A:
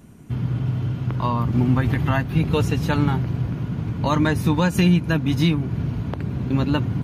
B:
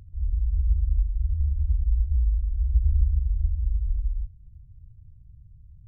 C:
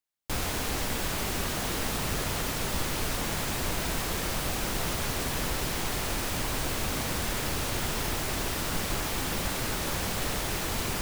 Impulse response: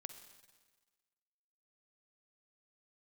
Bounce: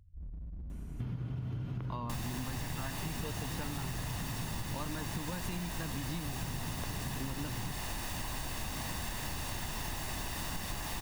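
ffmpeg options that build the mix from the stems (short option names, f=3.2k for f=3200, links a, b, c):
-filter_complex "[0:a]acompressor=threshold=-20dB:ratio=6,adelay=700,volume=-5dB[a];[1:a]volume=26.5dB,asoftclip=hard,volume=-26.5dB,volume=-17dB,asplit=2[b][c];[c]volume=-3dB[d];[2:a]aecho=1:1:1.1:0.5,adelay=1800,volume=-1dB[e];[3:a]atrim=start_sample=2205[f];[d][f]afir=irnorm=-1:irlink=0[g];[a][b][e][g]amix=inputs=4:normalize=0,acompressor=threshold=-35dB:ratio=6"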